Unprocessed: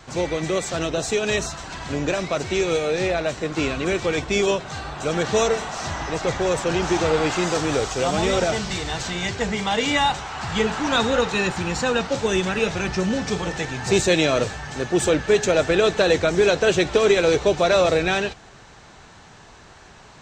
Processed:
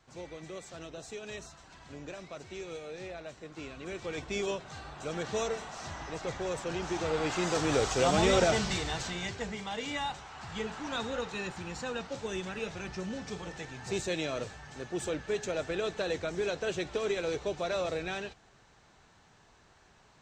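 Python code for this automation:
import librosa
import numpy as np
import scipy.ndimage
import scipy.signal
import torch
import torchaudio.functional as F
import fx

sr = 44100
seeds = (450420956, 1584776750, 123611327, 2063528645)

y = fx.gain(x, sr, db=fx.line((3.7, -20.0), (4.26, -13.0), (6.93, -13.0), (7.92, -4.0), (8.63, -4.0), (9.65, -15.0)))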